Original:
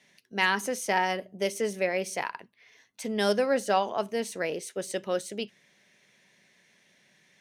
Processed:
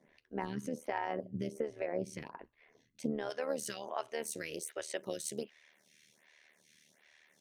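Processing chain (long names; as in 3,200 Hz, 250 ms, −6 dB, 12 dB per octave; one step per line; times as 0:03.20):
spectral tilt −3.5 dB per octave, from 0:03.29 +1.5 dB per octave
downward compressor 6 to 1, threshold −30 dBFS, peak gain reduction 12 dB
amplitude modulation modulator 76 Hz, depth 65%
phaser with staggered stages 1.3 Hz
level +2.5 dB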